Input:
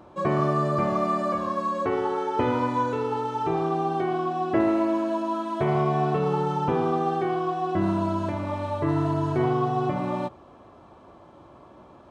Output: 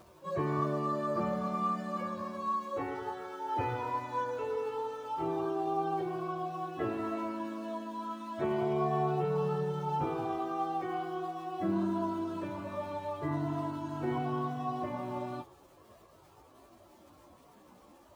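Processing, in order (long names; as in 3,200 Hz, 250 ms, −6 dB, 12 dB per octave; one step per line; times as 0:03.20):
flanger 0.47 Hz, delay 1.7 ms, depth 2.6 ms, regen −48%
surface crackle 490 per second −48 dBFS
time stretch by phase vocoder 1.5×
level −2 dB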